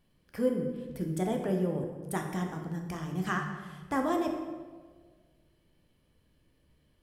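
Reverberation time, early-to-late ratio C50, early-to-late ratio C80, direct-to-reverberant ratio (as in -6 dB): 1.6 s, 5.0 dB, 7.0 dB, 2.0 dB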